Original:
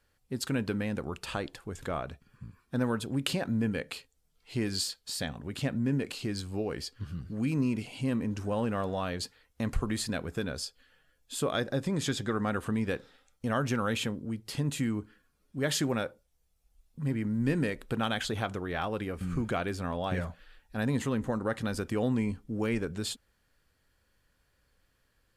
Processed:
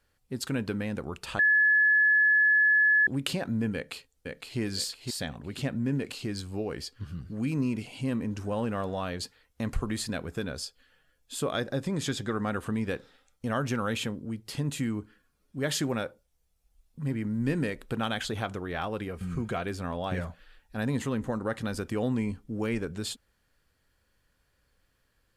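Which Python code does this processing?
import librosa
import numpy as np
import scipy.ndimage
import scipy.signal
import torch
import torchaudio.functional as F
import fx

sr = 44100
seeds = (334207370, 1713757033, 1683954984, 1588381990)

y = fx.echo_throw(x, sr, start_s=3.74, length_s=0.85, ms=510, feedback_pct=30, wet_db=-4.0)
y = fx.notch_comb(y, sr, f0_hz=290.0, at=(19.08, 19.66))
y = fx.edit(y, sr, fx.bleep(start_s=1.39, length_s=1.68, hz=1710.0, db=-18.5), tone=tone)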